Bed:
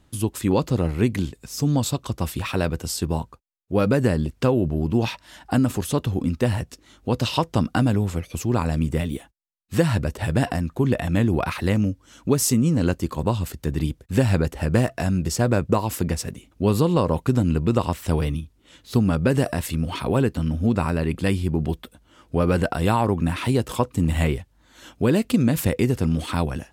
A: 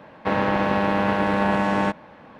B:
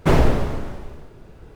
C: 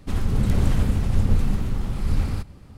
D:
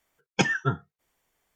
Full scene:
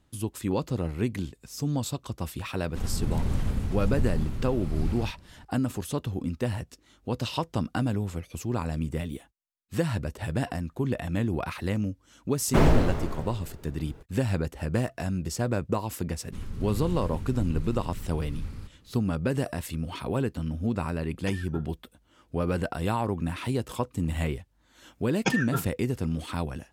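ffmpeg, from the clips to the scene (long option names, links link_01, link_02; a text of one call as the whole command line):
ffmpeg -i bed.wav -i cue0.wav -i cue1.wav -i cue2.wav -i cue3.wav -filter_complex "[3:a]asplit=2[link_01][link_02];[4:a]asplit=2[link_03][link_04];[0:a]volume=-7.5dB[link_05];[link_02]equalizer=frequency=710:width_type=o:width=0.57:gain=-8[link_06];[link_04]bandreject=frequency=3100:width=17[link_07];[link_01]atrim=end=2.77,asetpts=PTS-STARTPTS,volume=-7.5dB,afade=type=in:duration=0.004:curve=hsin,afade=type=out:start_time=2.766:duration=0.004:curve=hsin,adelay=2680[link_08];[2:a]atrim=end=1.55,asetpts=PTS-STARTPTS,volume=-4.5dB,afade=type=in:duration=0.004:curve=hsin,afade=type=out:start_time=1.546:duration=0.004:curve=hsin,adelay=12480[link_09];[link_06]atrim=end=2.77,asetpts=PTS-STARTPTS,volume=-13.5dB,afade=type=in:duration=0.004:curve=hsin,afade=type=out:start_time=2.766:duration=0.004:curve=hsin,adelay=16250[link_10];[link_03]atrim=end=1.55,asetpts=PTS-STARTPTS,volume=-17dB,afade=type=in:duration=0.004:curve=hsin,afade=type=out:start_time=1.546:duration=0.004:curve=hsin,adelay=20880[link_11];[link_07]atrim=end=1.55,asetpts=PTS-STARTPTS,volume=-3.5dB,afade=type=in:duration=0.004:curve=hsin,afade=type=out:start_time=1.546:duration=0.004:curve=hsin,adelay=24870[link_12];[link_05][link_08][link_09][link_10][link_11][link_12]amix=inputs=6:normalize=0" out.wav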